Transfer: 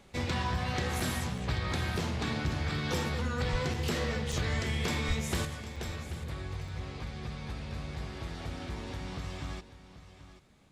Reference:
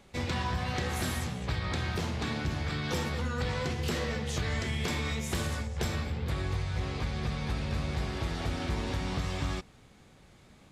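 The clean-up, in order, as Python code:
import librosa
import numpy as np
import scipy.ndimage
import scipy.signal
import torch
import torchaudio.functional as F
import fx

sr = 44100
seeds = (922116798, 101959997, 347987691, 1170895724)

y = fx.highpass(x, sr, hz=140.0, slope=24, at=(3.51, 3.63), fade=0.02)
y = fx.highpass(y, sr, hz=140.0, slope=24, at=(5.07, 5.19), fade=0.02)
y = fx.fix_interpolate(y, sr, at_s=(1.0, 1.38, 3.74, 4.32, 5.76, 6.68), length_ms=3.5)
y = fx.fix_echo_inverse(y, sr, delay_ms=785, level_db=-14.0)
y = fx.gain(y, sr, db=fx.steps((0.0, 0.0), (5.45, 6.5)))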